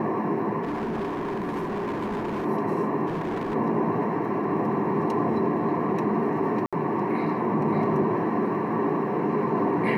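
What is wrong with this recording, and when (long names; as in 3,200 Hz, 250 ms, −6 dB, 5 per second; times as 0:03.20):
0:00.62–0:02.46: clipping −26 dBFS
0:03.06–0:03.55: clipping −25.5 dBFS
0:06.66–0:06.73: drop-out 66 ms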